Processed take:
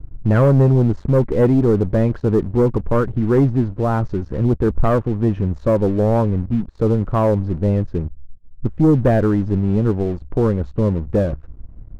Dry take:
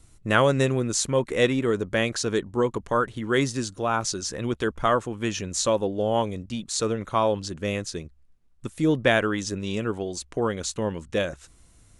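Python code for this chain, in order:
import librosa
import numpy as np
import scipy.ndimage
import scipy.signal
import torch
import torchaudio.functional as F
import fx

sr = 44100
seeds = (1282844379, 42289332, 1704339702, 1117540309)

y = scipy.signal.sosfilt(scipy.signal.butter(2, 1300.0, 'lowpass', fs=sr, output='sos'), x)
y = fx.tilt_eq(y, sr, slope=-4.0)
y = fx.leveller(y, sr, passes=2)
y = y * librosa.db_to_amplitude(-4.0)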